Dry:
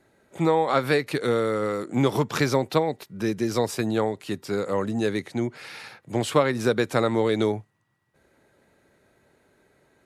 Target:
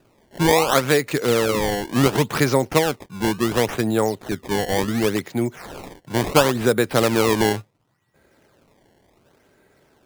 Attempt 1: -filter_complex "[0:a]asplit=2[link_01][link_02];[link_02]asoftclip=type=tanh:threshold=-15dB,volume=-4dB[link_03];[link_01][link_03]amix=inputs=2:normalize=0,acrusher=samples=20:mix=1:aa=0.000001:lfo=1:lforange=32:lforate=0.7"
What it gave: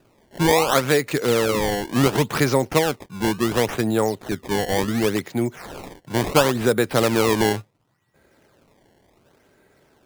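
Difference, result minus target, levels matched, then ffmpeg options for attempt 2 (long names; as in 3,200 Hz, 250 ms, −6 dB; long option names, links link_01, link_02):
soft clipping: distortion +16 dB
-filter_complex "[0:a]asplit=2[link_01][link_02];[link_02]asoftclip=type=tanh:threshold=-4.5dB,volume=-4dB[link_03];[link_01][link_03]amix=inputs=2:normalize=0,acrusher=samples=20:mix=1:aa=0.000001:lfo=1:lforange=32:lforate=0.7"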